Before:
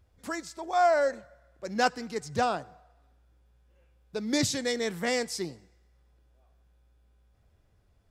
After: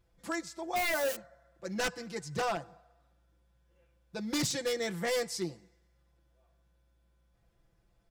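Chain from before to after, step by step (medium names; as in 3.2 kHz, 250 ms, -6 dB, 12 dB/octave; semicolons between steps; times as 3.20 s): 0.76–1.16 s: zero-crossing glitches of -22.5 dBFS; comb 5.9 ms, depth 94%; wavefolder -20 dBFS; trim -5 dB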